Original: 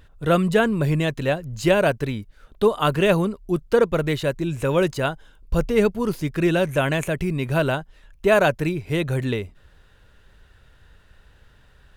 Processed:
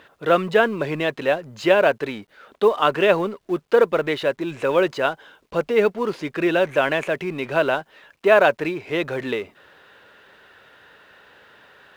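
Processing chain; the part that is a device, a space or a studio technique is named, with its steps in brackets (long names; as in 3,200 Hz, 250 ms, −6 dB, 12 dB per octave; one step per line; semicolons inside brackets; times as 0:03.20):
phone line with mismatched companding (band-pass filter 370–3,400 Hz; mu-law and A-law mismatch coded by mu)
level +3 dB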